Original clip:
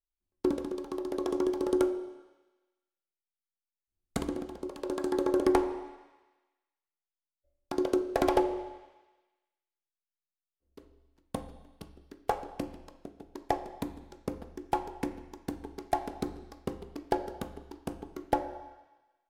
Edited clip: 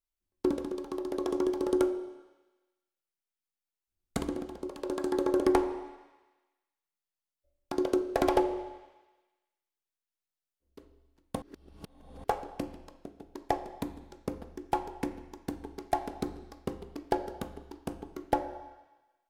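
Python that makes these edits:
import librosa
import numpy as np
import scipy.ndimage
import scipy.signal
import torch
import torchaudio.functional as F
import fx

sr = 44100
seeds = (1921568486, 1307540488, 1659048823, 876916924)

y = fx.edit(x, sr, fx.reverse_span(start_s=11.42, length_s=0.82), tone=tone)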